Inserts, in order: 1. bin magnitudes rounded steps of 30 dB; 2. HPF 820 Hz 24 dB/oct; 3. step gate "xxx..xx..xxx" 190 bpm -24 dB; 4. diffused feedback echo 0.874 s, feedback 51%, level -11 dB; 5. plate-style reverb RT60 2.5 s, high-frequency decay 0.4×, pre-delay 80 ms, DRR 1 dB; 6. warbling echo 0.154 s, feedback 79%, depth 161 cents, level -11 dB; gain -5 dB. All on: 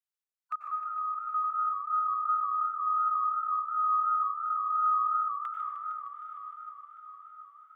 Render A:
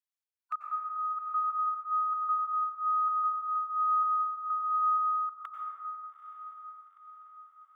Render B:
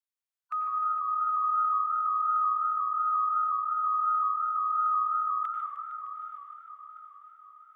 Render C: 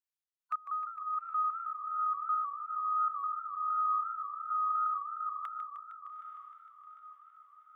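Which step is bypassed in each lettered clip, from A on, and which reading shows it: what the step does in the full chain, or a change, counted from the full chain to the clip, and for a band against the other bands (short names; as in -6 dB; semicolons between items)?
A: 6, momentary loudness spread change -1 LU; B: 3, momentary loudness spread change -3 LU; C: 5, loudness change -4.5 LU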